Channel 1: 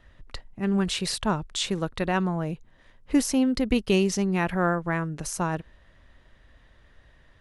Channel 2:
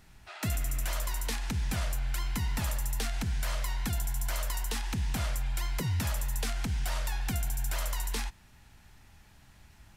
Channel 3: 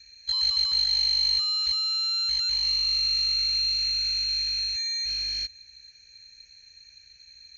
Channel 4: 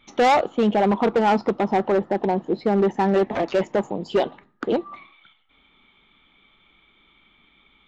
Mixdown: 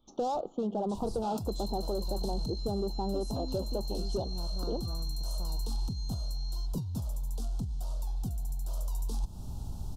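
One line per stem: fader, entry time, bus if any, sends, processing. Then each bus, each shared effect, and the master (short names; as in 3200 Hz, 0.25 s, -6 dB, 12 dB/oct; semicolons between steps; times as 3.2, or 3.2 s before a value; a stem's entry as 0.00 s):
-17.0 dB, 0.00 s, no send, dry
+2.5 dB, 0.95 s, no send, tone controls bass 0 dB, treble -3 dB; negative-ratio compressor -37 dBFS, ratio -0.5; low shelf 270 Hz +8.5 dB
-15.5 dB, 1.20 s, no send, dry
-8.5 dB, 0.00 s, no send, dry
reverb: off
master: Butterworth band-stop 2000 Hz, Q 0.57; compressor 3:1, threshold -30 dBFS, peak gain reduction 7.5 dB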